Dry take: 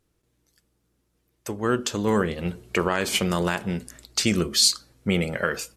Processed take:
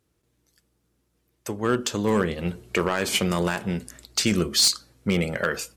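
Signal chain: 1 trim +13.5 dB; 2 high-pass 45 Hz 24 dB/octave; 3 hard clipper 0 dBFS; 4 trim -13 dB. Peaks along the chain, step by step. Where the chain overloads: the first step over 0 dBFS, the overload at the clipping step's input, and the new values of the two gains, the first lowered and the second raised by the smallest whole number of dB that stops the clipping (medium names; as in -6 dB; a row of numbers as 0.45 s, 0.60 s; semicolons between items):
+7.0 dBFS, +7.0 dBFS, 0.0 dBFS, -13.0 dBFS; step 1, 7.0 dB; step 1 +6.5 dB, step 4 -6 dB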